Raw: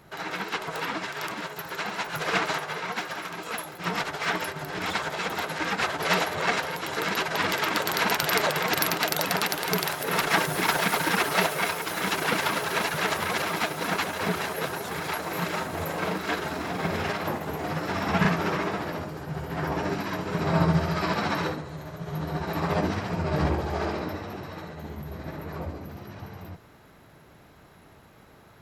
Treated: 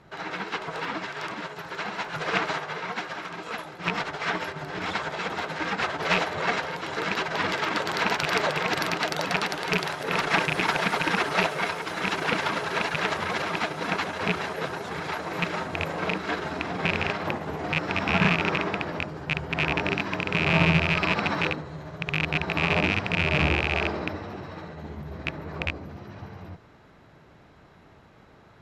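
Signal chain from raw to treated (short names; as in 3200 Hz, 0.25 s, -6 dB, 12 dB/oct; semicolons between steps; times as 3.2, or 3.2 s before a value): rattling part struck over -30 dBFS, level -10 dBFS; air absorption 84 m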